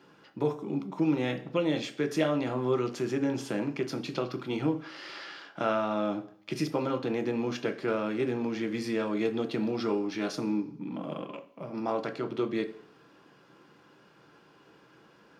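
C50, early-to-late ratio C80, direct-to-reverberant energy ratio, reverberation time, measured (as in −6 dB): 14.0 dB, 17.5 dB, 6.0 dB, 0.55 s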